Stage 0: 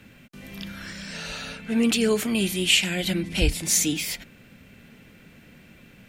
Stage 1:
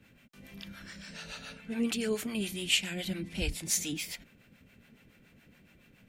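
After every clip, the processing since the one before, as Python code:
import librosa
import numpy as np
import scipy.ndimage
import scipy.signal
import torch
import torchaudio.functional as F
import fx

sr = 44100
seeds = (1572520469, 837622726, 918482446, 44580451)

y = fx.harmonic_tremolo(x, sr, hz=7.1, depth_pct=70, crossover_hz=530.0)
y = y * 10.0 ** (-6.5 / 20.0)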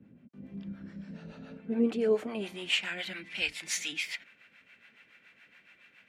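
y = fx.filter_sweep_bandpass(x, sr, from_hz=230.0, to_hz=2000.0, start_s=1.33, end_s=3.26, q=1.3)
y = y * 10.0 ** (8.5 / 20.0)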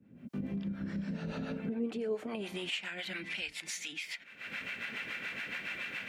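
y = fx.recorder_agc(x, sr, target_db=-22.0, rise_db_per_s=69.0, max_gain_db=30)
y = y * 10.0 ** (-8.5 / 20.0)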